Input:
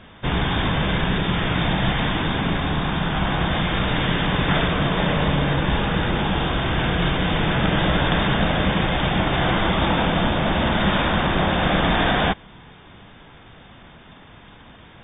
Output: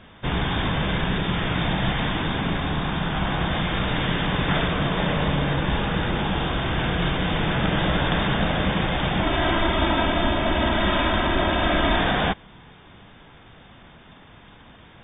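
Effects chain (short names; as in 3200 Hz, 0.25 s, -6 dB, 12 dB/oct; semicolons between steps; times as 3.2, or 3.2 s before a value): 9.23–11.99 comb 3.1 ms, depth 62%; gain -2.5 dB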